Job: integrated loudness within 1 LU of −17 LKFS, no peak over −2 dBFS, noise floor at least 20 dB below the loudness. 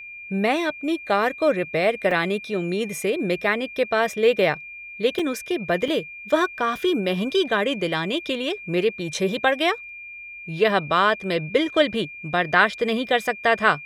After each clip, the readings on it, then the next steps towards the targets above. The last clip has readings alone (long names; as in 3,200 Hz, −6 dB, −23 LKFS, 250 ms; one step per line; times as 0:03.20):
number of dropouts 3; longest dropout 3.8 ms; interfering tone 2,400 Hz; level of the tone −36 dBFS; integrated loudness −22.5 LKFS; sample peak −2.5 dBFS; target loudness −17.0 LKFS
→ repair the gap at 0:02.11/0:05.19/0:05.88, 3.8 ms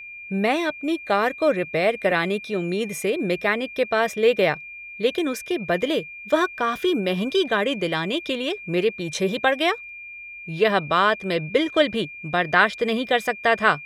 number of dropouts 0; interfering tone 2,400 Hz; level of the tone −36 dBFS
→ notch filter 2,400 Hz, Q 30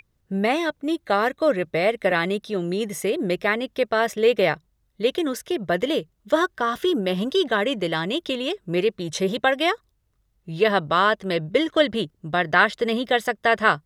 interfering tone none found; integrated loudness −23.0 LKFS; sample peak −3.0 dBFS; target loudness −17.0 LKFS
→ level +6 dB
brickwall limiter −2 dBFS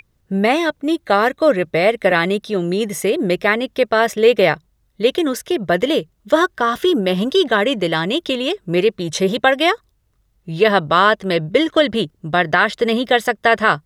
integrated loudness −17.0 LKFS; sample peak −2.0 dBFS; background noise floor −63 dBFS